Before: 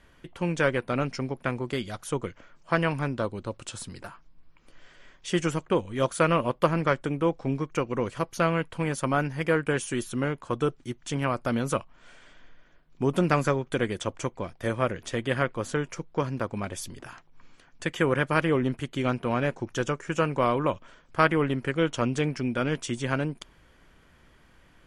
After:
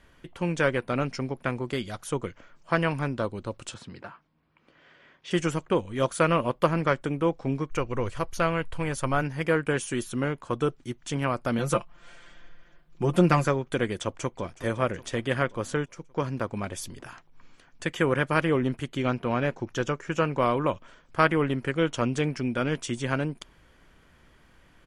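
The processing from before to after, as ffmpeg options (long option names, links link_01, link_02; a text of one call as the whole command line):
ffmpeg -i in.wav -filter_complex "[0:a]asettb=1/sr,asplit=3[link_01][link_02][link_03];[link_01]atrim=end=3.744[link_04];[link_02]atrim=start=3.74:end=5.31,asetpts=PTS-STARTPTS,afade=type=in:duration=0.004:curve=qsin,afade=type=out:start_time=1.566:duration=0.004:curve=qsin,highpass=110,lowpass=3400[link_05];[link_03]atrim=start=5.306[link_06];[link_04][link_05]acrossfade=duration=0.004:curve1=hsin:curve2=qsin[link_07];[link_07][link_06]acrossfade=duration=0.004:curve1=qsin:curve2=hsin,asplit=3[link_08][link_09][link_10];[link_08]afade=type=out:start_time=7.69:duration=0.02[link_11];[link_09]asubboost=boost=7:cutoff=70,afade=type=in:start_time=7.69:duration=0.02,afade=type=out:start_time=9.21:duration=0.02[link_12];[link_10]afade=type=in:start_time=9.21:duration=0.02[link_13];[link_11][link_12][link_13]amix=inputs=3:normalize=0,asettb=1/sr,asplit=3[link_14][link_15][link_16];[link_14]atrim=end=11.584[link_17];[link_15]atrim=start=11.58:end=13.45,asetpts=PTS-STARTPTS,afade=type=in:duration=0.004:curve=qsin,afade=type=out:start_time=1.866:duration=0.004:curve=qsin,aecho=1:1:5.8:0.71,atrim=end_sample=82467[link_18];[link_16]atrim=start=13.446[link_19];[link_17][link_18]acrossfade=duration=0.004:curve1=hsin:curve2=qsin[link_20];[link_20][link_19]acrossfade=duration=0.004:curve1=qsin:curve2=hsin,asplit=2[link_21][link_22];[link_22]afade=type=in:start_time=14.01:duration=0.01,afade=type=out:start_time=14.53:duration=0.01,aecho=0:1:370|740|1110|1480|1850|2220|2590:0.16788|0.109122|0.0709295|0.0461042|0.0299677|0.019479|0.0126614[link_23];[link_21][link_23]amix=inputs=2:normalize=0,asettb=1/sr,asplit=3[link_24][link_25][link_26];[link_24]atrim=end=18.974[link_27];[link_25]atrim=start=18.97:end=20.39,asetpts=PTS-STARTPTS,afade=type=in:duration=0.004:curve=qsin,afade=type=out:start_time=1.416:duration=0.004:curve=qsin,equalizer=frequency=9000:width_type=o:width=0.45:gain=-9.5[link_28];[link_26]atrim=start=20.386[link_29];[link_27][link_28]acrossfade=duration=0.004:curve1=hsin:curve2=qsin[link_30];[link_30][link_29]acrossfade=duration=0.004:curve1=qsin:curve2=hsin,asplit=2[link_31][link_32];[link_31]atrim=end=15.86,asetpts=PTS-STARTPTS,afade=type=out:start_time=15.856:duration=0.004:curve=hsin:silence=0.237137[link_33];[link_32]atrim=start=15.86,asetpts=PTS-STARTPTS,afade=type=in:duration=0.4:silence=0.237137[link_34];[link_33][link_34]concat=n=2:v=0:a=1" out.wav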